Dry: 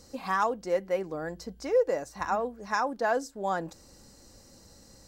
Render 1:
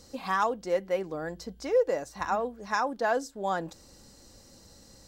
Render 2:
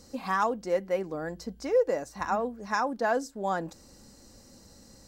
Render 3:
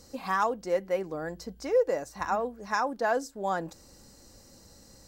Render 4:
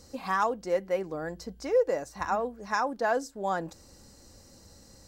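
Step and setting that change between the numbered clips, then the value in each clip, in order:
peaking EQ, frequency: 3.4 kHz, 230 Hz, 16 kHz, 80 Hz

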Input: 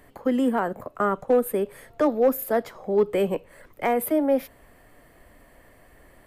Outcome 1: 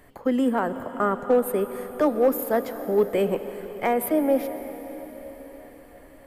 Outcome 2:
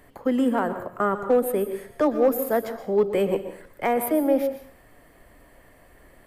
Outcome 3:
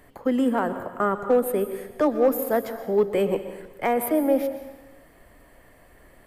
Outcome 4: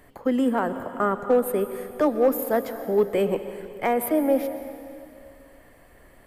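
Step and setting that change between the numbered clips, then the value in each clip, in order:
plate-style reverb, RT60: 5.2 s, 0.52 s, 1.1 s, 2.5 s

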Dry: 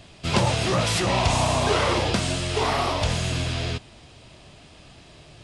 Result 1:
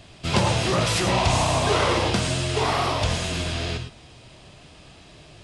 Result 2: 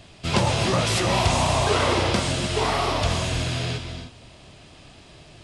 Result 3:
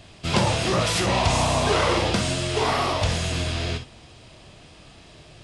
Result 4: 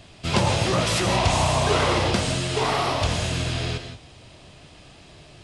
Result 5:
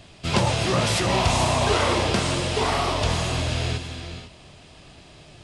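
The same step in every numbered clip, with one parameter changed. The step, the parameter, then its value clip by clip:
gated-style reverb, gate: 130 ms, 330 ms, 80 ms, 200 ms, 520 ms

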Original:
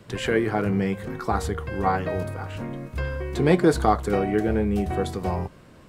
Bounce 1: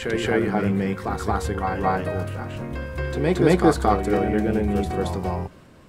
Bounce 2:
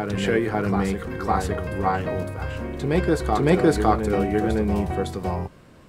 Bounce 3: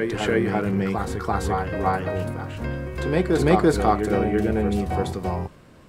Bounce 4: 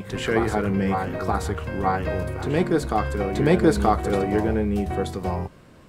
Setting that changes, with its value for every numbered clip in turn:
reverse echo, time: 225 ms, 558 ms, 338 ms, 928 ms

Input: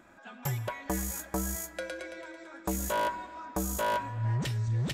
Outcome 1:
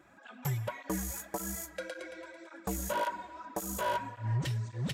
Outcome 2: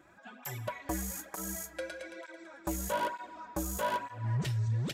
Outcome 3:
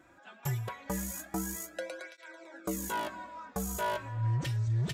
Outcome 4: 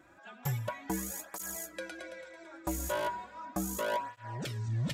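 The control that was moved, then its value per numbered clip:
cancelling through-zero flanger, nulls at: 1.8 Hz, 1.1 Hz, 0.23 Hz, 0.36 Hz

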